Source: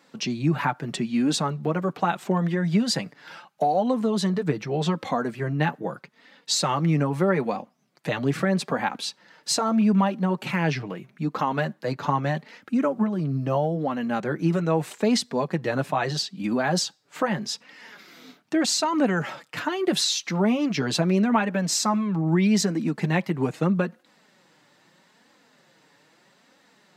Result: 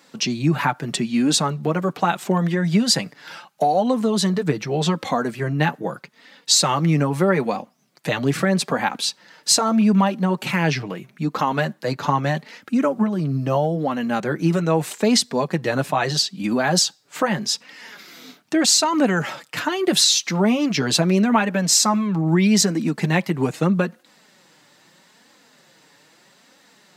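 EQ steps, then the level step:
high-shelf EQ 3,900 Hz +7.5 dB
+3.5 dB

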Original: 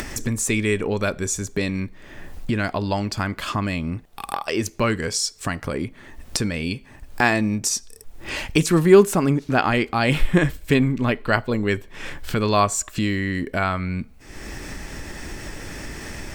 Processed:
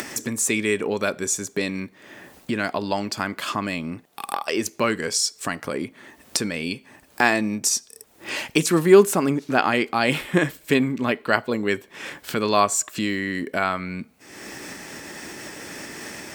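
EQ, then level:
high-pass filter 210 Hz 12 dB per octave
high-shelf EQ 7,900 Hz +4 dB
0.0 dB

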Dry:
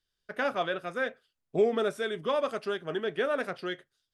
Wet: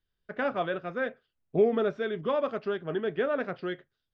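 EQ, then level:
Butterworth low-pass 7,300 Hz
high-frequency loss of the air 250 metres
low-shelf EQ 310 Hz +6 dB
0.0 dB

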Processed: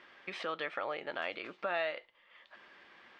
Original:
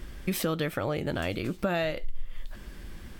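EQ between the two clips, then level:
band-pass filter 790–3,100 Hz
high-frequency loss of the air 98 metres
notch filter 1,500 Hz, Q 20
0.0 dB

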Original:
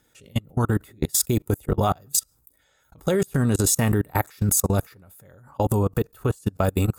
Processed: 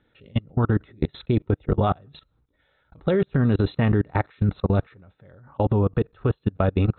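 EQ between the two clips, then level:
linear-phase brick-wall low-pass 4,200 Hz
high-frequency loss of the air 220 metres
parametric band 920 Hz −2.5 dB 0.77 octaves
+1.5 dB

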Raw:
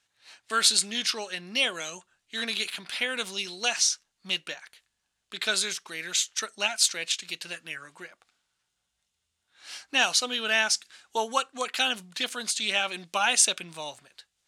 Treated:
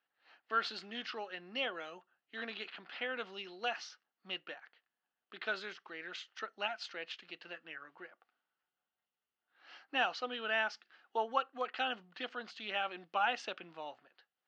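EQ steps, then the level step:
high-frequency loss of the air 72 metres
loudspeaker in its box 410–3,900 Hz, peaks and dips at 420 Hz −5 dB, 600 Hz −6 dB, 990 Hz −7 dB, 1,600 Hz −3 dB, 2,300 Hz −8 dB, 3,700 Hz −9 dB
high-shelf EQ 2,300 Hz −12 dB
+1.0 dB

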